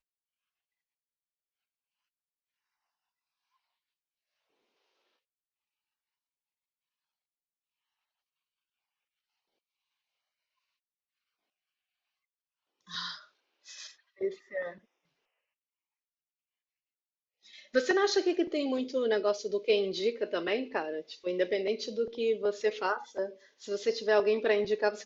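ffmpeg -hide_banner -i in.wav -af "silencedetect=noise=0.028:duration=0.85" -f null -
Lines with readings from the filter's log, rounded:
silence_start: 0.00
silence_end: 12.94 | silence_duration: 12.94
silence_start: 13.11
silence_end: 14.21 | silence_duration: 1.10
silence_start: 14.68
silence_end: 17.75 | silence_duration: 3.08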